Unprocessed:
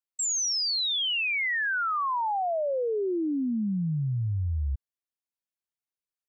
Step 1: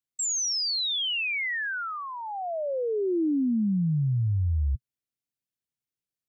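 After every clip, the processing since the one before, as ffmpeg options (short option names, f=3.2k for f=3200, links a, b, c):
-af "equalizer=f=125:t=o:w=1:g=11,equalizer=f=250:t=o:w=1:g=4,equalizer=f=1k:t=o:w=1:g=-9,alimiter=limit=-21.5dB:level=0:latency=1:release=29"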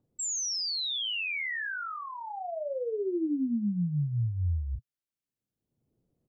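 -filter_complex "[0:a]acrossover=split=560|1700[a][b][c];[a]acompressor=mode=upward:threshold=-46dB:ratio=2.5[d];[d][b][c]amix=inputs=3:normalize=0,asplit=2[e][f];[f]adelay=34,volume=-7.5dB[g];[e][g]amix=inputs=2:normalize=0,volume=-5dB"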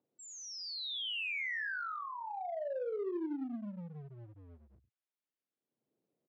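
-filter_complex "[0:a]aecho=1:1:91:0.266,asplit=2[a][b];[b]volume=33dB,asoftclip=hard,volume=-33dB,volume=-5dB[c];[a][c]amix=inputs=2:normalize=0,highpass=330,lowpass=3.4k,volume=-7dB"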